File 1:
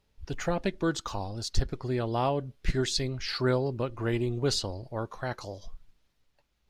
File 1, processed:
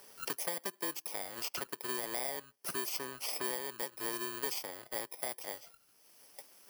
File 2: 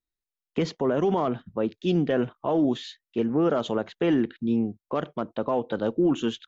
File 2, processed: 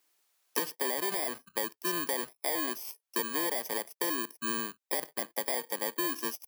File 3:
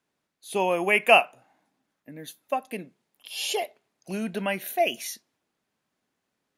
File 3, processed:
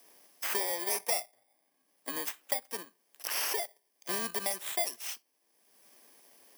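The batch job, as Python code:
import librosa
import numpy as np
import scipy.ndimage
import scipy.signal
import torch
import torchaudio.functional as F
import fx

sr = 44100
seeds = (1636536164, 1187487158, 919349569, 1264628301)

p1 = fx.bit_reversed(x, sr, seeds[0], block=32)
p2 = scipy.signal.sosfilt(scipy.signal.butter(2, 480.0, 'highpass', fs=sr, output='sos'), p1)
p3 = np.where(np.abs(p2) >= 10.0 ** (-41.0 / 20.0), p2, 0.0)
p4 = p2 + (p3 * librosa.db_to_amplitude(-9.5))
p5 = fx.band_squash(p4, sr, depth_pct=100)
y = p5 * librosa.db_to_amplitude(-8.5)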